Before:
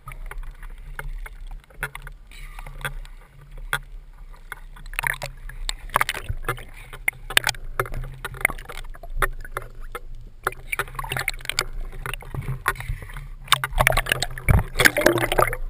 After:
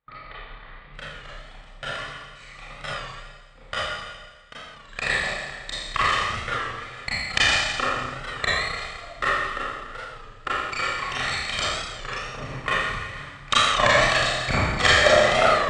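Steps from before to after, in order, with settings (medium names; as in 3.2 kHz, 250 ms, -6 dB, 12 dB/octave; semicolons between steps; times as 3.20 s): comb filter that takes the minimum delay 1.6 ms; elliptic low-pass 4.1 kHz, stop band 60 dB, from 0.93 s 7.9 kHz; gate with hold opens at -33 dBFS; high-pass 1.3 kHz 6 dB/octave; tilt EQ -3 dB/octave; Schroeder reverb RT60 1.4 s, combs from 28 ms, DRR -9.5 dB; warped record 33 1/3 rpm, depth 100 cents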